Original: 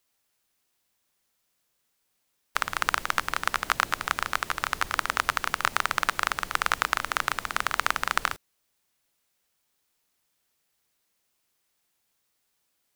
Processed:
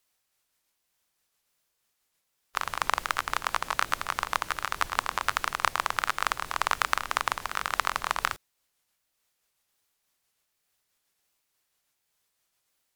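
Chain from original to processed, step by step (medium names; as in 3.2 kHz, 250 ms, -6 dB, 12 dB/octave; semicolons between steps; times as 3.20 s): sawtooth pitch modulation -3.5 st, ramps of 747 ms; peaking EQ 240 Hz -4 dB 1.6 oct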